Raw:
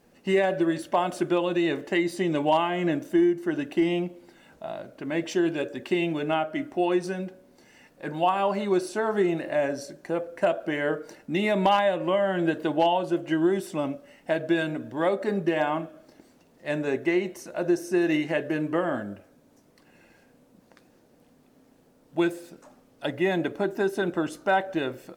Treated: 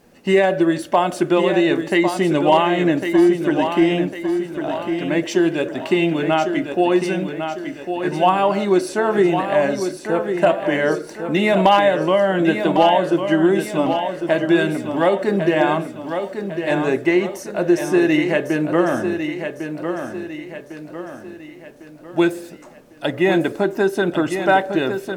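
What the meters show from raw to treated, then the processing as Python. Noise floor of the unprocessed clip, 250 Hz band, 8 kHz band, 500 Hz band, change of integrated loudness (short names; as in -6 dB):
-60 dBFS, +8.5 dB, +8.5 dB, +8.5 dB, +7.5 dB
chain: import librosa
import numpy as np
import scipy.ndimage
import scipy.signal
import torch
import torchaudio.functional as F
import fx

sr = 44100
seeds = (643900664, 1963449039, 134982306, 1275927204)

y = fx.echo_feedback(x, sr, ms=1102, feedback_pct=44, wet_db=-7.5)
y = y * librosa.db_to_amplitude(7.5)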